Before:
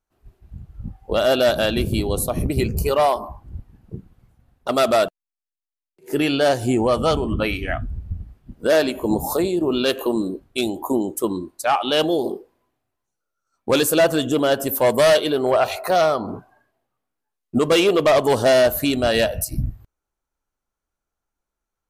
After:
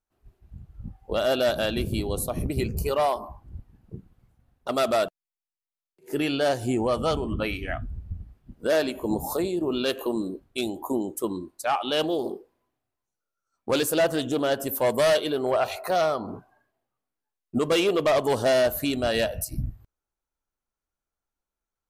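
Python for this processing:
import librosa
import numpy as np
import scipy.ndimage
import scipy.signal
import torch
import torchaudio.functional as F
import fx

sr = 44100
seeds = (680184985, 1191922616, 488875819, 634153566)

y = fx.doppler_dist(x, sr, depth_ms=0.1, at=(12.03, 14.61))
y = y * librosa.db_to_amplitude(-6.0)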